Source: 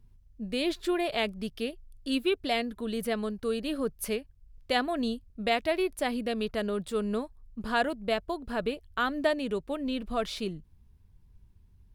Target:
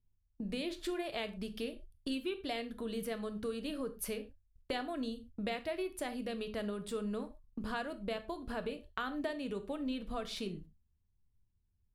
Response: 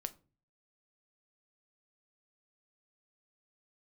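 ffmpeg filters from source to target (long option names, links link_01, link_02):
-filter_complex "[0:a]agate=range=-24dB:threshold=-46dB:ratio=16:detection=peak,acompressor=threshold=-42dB:ratio=4[link_01];[1:a]atrim=start_sample=2205,atrim=end_sample=3528,asetrate=26460,aresample=44100[link_02];[link_01][link_02]afir=irnorm=-1:irlink=0,volume=3.5dB"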